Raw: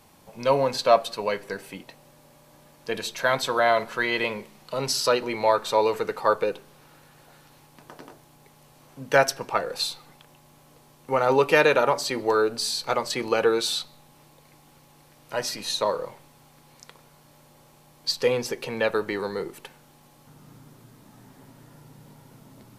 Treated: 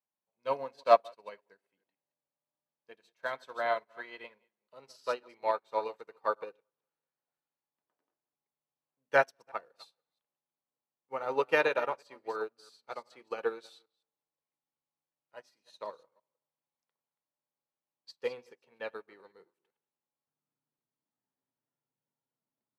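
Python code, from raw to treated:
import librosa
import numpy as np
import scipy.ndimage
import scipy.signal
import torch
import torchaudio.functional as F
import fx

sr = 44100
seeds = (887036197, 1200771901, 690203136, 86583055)

p1 = fx.reverse_delay(x, sr, ms=167, wet_db=-12.0)
p2 = fx.highpass(p1, sr, hz=420.0, slope=6)
p3 = fx.high_shelf(p2, sr, hz=4400.0, db=-10.0)
p4 = p3 + fx.echo_tape(p3, sr, ms=188, feedback_pct=47, wet_db=-22.0, lp_hz=2500.0, drive_db=1.0, wow_cents=6, dry=0)
y = fx.upward_expand(p4, sr, threshold_db=-41.0, expansion=2.5)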